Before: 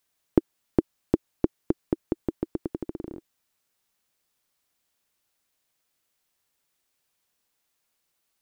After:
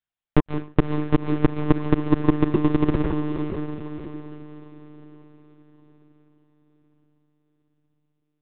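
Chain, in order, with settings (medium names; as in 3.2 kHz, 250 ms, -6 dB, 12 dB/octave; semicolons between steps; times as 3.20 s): reverb removal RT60 1.5 s; waveshaping leveller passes 5; echo that smears into a reverb 565 ms, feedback 43%, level -6 dB; on a send at -6 dB: reverberation RT60 0.40 s, pre-delay 106 ms; on the sum: monotone LPC vocoder at 8 kHz 150 Hz; trim -2 dB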